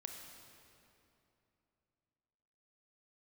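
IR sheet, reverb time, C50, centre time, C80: 2.9 s, 3.5 dB, 72 ms, 5.0 dB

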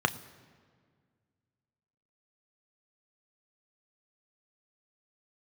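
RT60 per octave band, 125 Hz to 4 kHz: 2.4, 2.4, 2.0, 1.7, 1.6, 1.3 seconds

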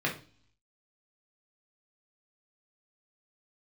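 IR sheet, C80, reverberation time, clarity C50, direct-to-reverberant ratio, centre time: 16.5 dB, 0.40 s, 10.0 dB, −3.0 dB, 19 ms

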